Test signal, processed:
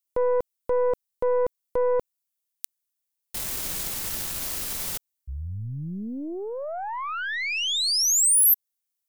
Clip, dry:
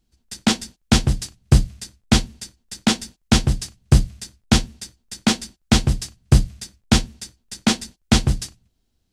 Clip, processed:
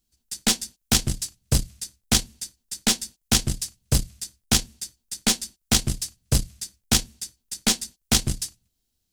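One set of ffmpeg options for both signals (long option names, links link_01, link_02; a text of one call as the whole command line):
ffmpeg -i in.wav -af "aeval=exprs='0.891*(cos(1*acos(clip(val(0)/0.891,-1,1)))-cos(1*PI/2))+0.0631*(cos(5*acos(clip(val(0)/0.891,-1,1)))-cos(5*PI/2))+0.1*(cos(6*acos(clip(val(0)/0.891,-1,1)))-cos(6*PI/2))+0.0562*(cos(7*acos(clip(val(0)/0.891,-1,1)))-cos(7*PI/2))':channel_layout=same,crystalizer=i=3.5:c=0,volume=-9dB" out.wav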